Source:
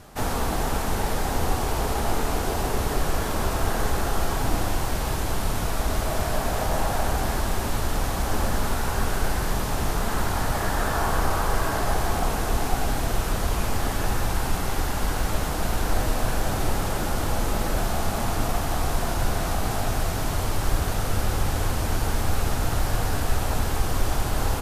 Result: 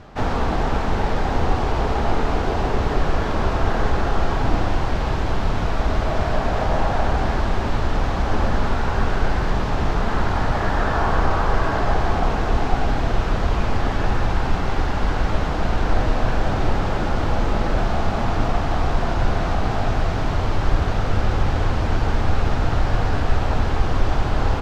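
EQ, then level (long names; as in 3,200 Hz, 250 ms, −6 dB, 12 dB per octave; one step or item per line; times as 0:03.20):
high-frequency loss of the air 190 metres
+5.0 dB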